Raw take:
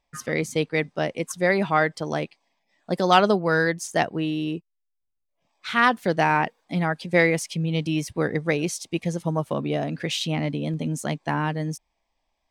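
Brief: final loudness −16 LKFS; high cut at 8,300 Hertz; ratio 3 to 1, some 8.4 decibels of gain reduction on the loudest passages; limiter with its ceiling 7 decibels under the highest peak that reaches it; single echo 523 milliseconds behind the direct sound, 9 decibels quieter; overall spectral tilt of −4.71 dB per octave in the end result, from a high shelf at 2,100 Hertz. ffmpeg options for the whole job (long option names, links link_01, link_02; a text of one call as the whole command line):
ffmpeg -i in.wav -af "lowpass=8300,highshelf=frequency=2100:gain=3.5,acompressor=threshold=-23dB:ratio=3,alimiter=limit=-17dB:level=0:latency=1,aecho=1:1:523:0.355,volume=13dB" out.wav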